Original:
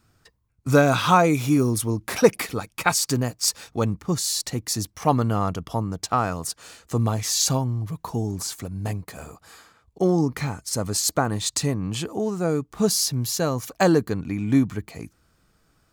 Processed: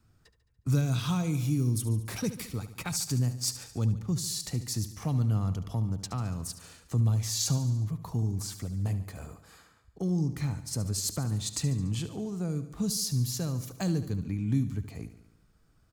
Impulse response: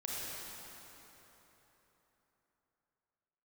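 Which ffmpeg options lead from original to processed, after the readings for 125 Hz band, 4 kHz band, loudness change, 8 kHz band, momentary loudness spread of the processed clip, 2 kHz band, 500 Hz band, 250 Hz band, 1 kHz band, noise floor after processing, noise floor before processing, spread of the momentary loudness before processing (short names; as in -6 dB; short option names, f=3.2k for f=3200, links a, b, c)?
-1.5 dB, -8.5 dB, -7.5 dB, -8.0 dB, 8 LU, -16.5 dB, -17.5 dB, -8.0 dB, -19.5 dB, -65 dBFS, -65 dBFS, 11 LU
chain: -filter_complex "[0:a]lowshelf=f=210:g=10,acrossover=split=220|3000[a][b][c];[b]acompressor=threshold=-32dB:ratio=4[d];[a][d][c]amix=inputs=3:normalize=0,asplit=2[e][f];[f]aecho=0:1:72|144|216|288|360|432:0.224|0.132|0.0779|0.046|0.0271|0.016[g];[e][g]amix=inputs=2:normalize=0,volume=-8.5dB"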